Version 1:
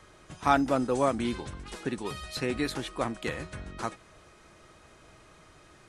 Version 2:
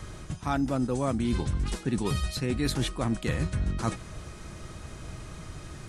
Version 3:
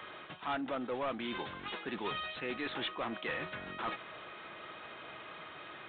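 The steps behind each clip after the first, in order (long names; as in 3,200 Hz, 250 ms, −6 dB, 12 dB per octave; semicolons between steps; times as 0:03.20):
bass and treble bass +13 dB, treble +5 dB; reversed playback; downward compressor 12 to 1, threshold −31 dBFS, peak gain reduction 15.5 dB; reversed playback; level +7 dB
Bessel high-pass filter 710 Hz, order 2; soft clipping −34.5 dBFS, distortion −8 dB; level +4 dB; G.726 40 kbit/s 8,000 Hz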